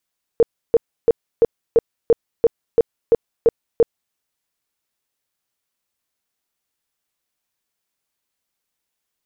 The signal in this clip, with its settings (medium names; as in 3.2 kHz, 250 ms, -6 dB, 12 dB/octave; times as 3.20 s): tone bursts 463 Hz, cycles 13, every 0.34 s, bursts 11, -8 dBFS